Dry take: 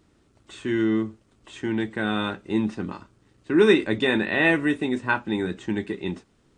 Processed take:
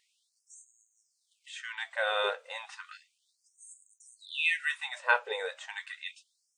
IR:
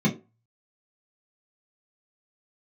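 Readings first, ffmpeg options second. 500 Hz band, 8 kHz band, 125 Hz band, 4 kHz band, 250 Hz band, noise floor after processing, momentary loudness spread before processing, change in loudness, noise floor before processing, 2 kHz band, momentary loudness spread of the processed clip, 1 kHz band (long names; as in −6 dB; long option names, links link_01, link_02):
−14.0 dB, can't be measured, below −40 dB, −4.5 dB, below −40 dB, −78 dBFS, 14 LU, −8.0 dB, −63 dBFS, −5.5 dB, 18 LU, −4.0 dB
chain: -af "lowshelf=frequency=500:width_type=q:width=1.5:gain=12.5,afftfilt=real='re*gte(b*sr/1024,430*pow(6500/430,0.5+0.5*sin(2*PI*0.33*pts/sr)))':imag='im*gte(b*sr/1024,430*pow(6500/430,0.5+0.5*sin(2*PI*0.33*pts/sr)))':win_size=1024:overlap=0.75"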